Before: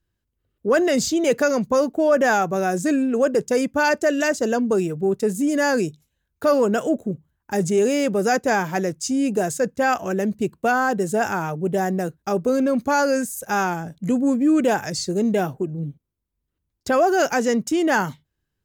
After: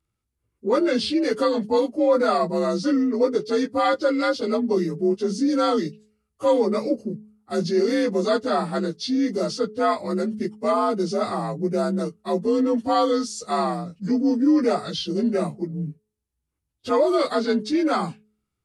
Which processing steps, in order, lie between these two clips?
partials spread apart or drawn together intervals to 88%
hum removal 213.2 Hz, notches 2

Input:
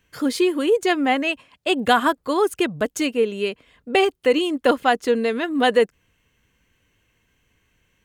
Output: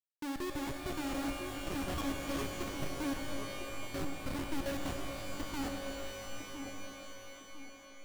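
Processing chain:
0:04.56–0:05.42: RIAA equalisation recording
resonances in every octave C#, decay 0.26 s
comparator with hysteresis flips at −36 dBFS
on a send: delay with a band-pass on its return 1,005 ms, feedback 35%, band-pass 430 Hz, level −6.5 dB
on the sum: reverb with rising layers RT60 3.5 s, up +12 semitones, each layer −2 dB, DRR 4.5 dB
level −1 dB

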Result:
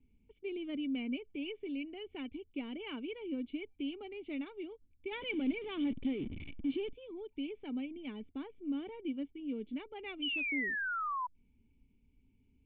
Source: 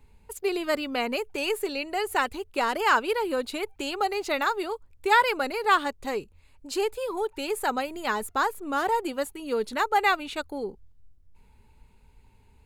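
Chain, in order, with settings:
0:05.11–0:06.93: converter with a step at zero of −25 dBFS
formant resonators in series i
0:10.22–0:11.27: sound drawn into the spectrogram fall 970–3,100 Hz −36 dBFS

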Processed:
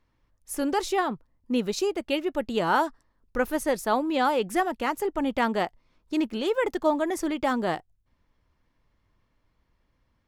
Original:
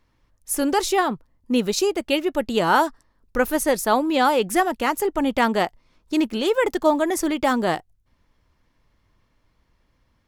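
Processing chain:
high-shelf EQ 5,300 Hz −6.5 dB
level −5 dB

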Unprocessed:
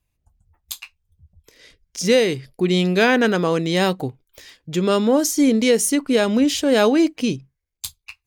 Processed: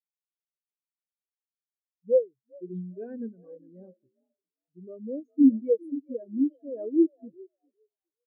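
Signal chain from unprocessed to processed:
echo with shifted repeats 405 ms, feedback 53%, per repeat +50 Hz, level −7 dB
every bin expanded away from the loudest bin 4 to 1
level −6.5 dB

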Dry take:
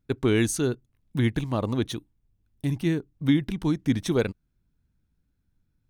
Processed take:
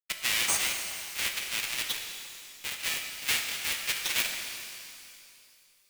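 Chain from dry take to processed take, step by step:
each half-wave held at its own peak
Chebyshev high-pass filter 2,300 Hz, order 3
downward expander −53 dBFS
in parallel at −8 dB: sample-rate reduction 7,200 Hz, jitter 0%
on the sum: reverb with rising layers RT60 2.5 s, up +12 semitones, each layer −8 dB, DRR 3 dB

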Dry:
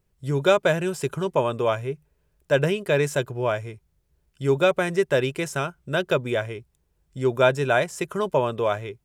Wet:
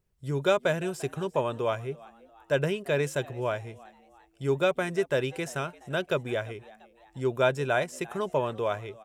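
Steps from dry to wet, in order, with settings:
echo with shifted repeats 344 ms, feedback 46%, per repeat +110 Hz, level −22 dB
level −5.5 dB

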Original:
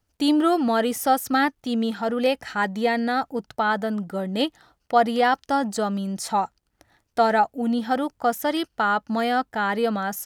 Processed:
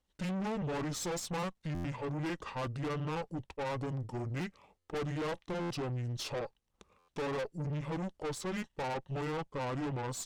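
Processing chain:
pitch shift by two crossfaded delay taps −8 semitones
tube saturation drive 30 dB, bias 0.5
buffer that repeats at 0:01.74/0:04.78/0:05.60/0:06.98, samples 512, times 8
level −3.5 dB

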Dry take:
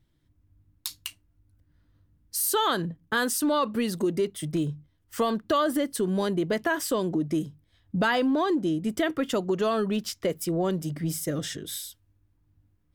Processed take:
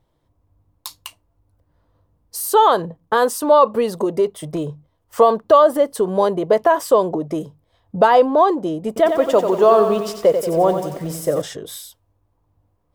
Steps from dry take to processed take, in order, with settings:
flat-topped bell 700 Hz +14 dB
0:08.87–0:11.42: feedback echo at a low word length 91 ms, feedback 55%, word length 7 bits, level −7 dB
level +1 dB

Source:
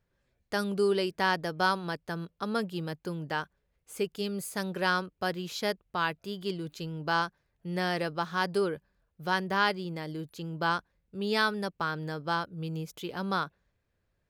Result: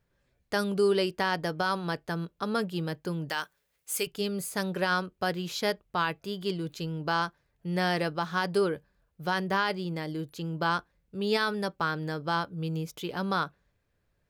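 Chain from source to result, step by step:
0:03.29–0:04.07: spectral tilt +3.5 dB per octave
brickwall limiter −19 dBFS, peak gain reduction 7 dB
convolution reverb RT60 0.15 s, pre-delay 7 ms, DRR 17.5 dB
level +2.5 dB

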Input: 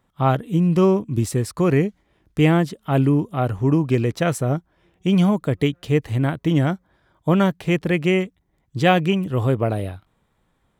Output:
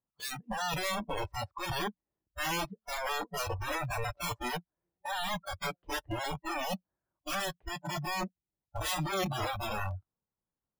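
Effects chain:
loose part that buzzes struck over −24 dBFS, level −12 dBFS
low-pass filter 1,300 Hz 12 dB per octave
low-shelf EQ 77 Hz −5.5 dB
downward compressor 2 to 1, threshold −29 dBFS, peak gain reduction 9.5 dB
wrap-around overflow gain 27.5 dB
noise reduction from a noise print of the clip's start 28 dB
level +2 dB

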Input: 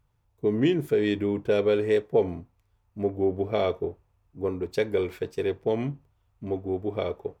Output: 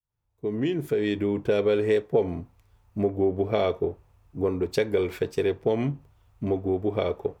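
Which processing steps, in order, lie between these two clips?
fade in at the beginning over 1.76 s
downward compressor 2 to 1, threshold −34 dBFS, peak gain reduction 10 dB
level +8.5 dB

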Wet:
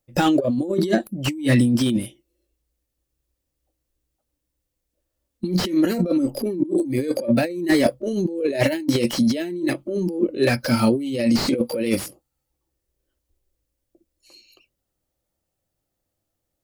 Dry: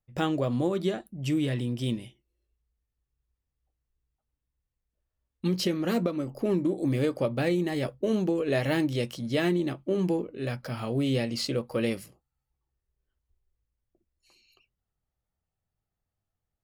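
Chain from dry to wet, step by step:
noise reduction from a noise print of the clip's start 13 dB
hollow resonant body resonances 320/530 Hz, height 14 dB, ringing for 30 ms
compressor whose output falls as the input rises −29 dBFS, ratio −1
high-shelf EQ 2,800 Hz +11.5 dB
slew-rate limiting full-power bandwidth 100 Hz
level +7 dB

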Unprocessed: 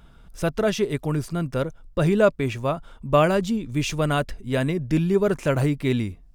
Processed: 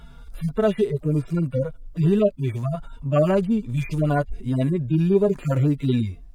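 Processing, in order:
harmonic-percussive split with one part muted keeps harmonic
in parallel at +3 dB: downward compressor, threshold −32 dBFS, peak gain reduction 16 dB

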